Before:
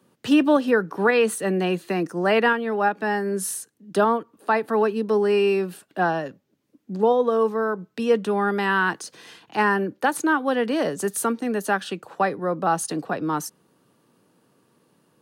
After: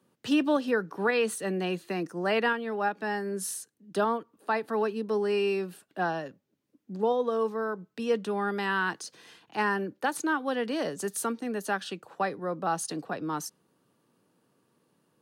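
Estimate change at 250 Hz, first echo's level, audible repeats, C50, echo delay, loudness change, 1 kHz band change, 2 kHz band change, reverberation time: -7.5 dB, no echo, no echo, no reverb, no echo, -7.0 dB, -7.5 dB, -6.5 dB, no reverb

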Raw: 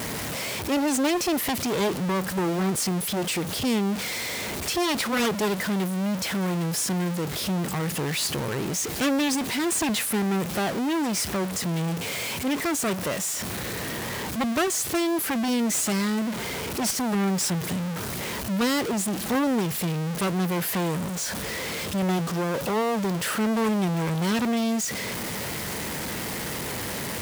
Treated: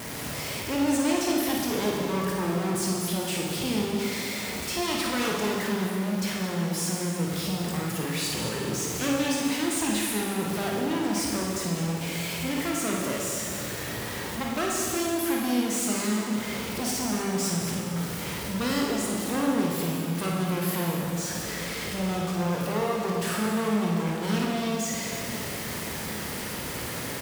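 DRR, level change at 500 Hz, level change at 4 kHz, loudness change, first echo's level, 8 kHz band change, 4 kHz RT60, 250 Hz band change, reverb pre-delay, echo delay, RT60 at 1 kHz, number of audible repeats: -2.5 dB, -1.5 dB, -2.0 dB, -2.0 dB, -6.5 dB, -2.0 dB, 1.8 s, -2.0 dB, 17 ms, 53 ms, 2.2 s, 1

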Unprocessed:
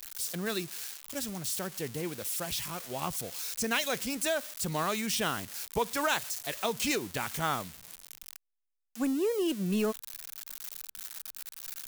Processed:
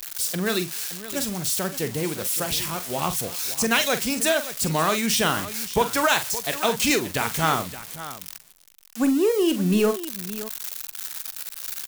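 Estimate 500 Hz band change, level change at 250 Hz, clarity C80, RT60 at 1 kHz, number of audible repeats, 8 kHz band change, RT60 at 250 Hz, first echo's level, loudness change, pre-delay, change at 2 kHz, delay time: +9.0 dB, +9.0 dB, no reverb, no reverb, 2, +9.0 dB, no reverb, -10.5 dB, +9.0 dB, no reverb, +9.0 dB, 44 ms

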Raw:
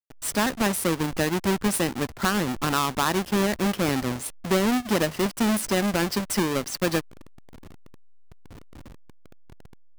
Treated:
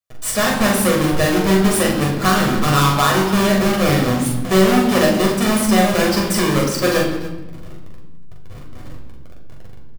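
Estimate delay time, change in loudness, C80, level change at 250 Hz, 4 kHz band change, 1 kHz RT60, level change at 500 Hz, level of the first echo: 42 ms, +8.5 dB, 6.5 dB, +8.5 dB, +8.5 dB, 1.0 s, +9.5 dB, -3.0 dB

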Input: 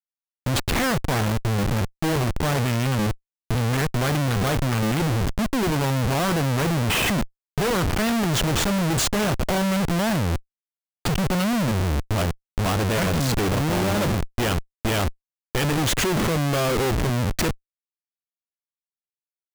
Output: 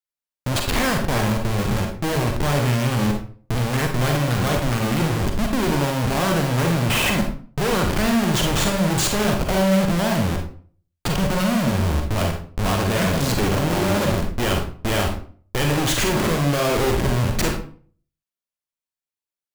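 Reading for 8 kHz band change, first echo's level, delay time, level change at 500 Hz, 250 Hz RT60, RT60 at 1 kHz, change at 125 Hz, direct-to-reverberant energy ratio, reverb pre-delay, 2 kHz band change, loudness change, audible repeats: +1.5 dB, no echo, no echo, +2.5 dB, 0.50 s, 0.45 s, +1.5 dB, 2.0 dB, 38 ms, +2.0 dB, +2.0 dB, no echo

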